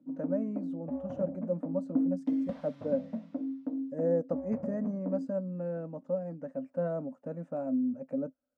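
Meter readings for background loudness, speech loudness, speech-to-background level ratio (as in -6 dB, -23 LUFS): -36.5 LUFS, -35.5 LUFS, 1.0 dB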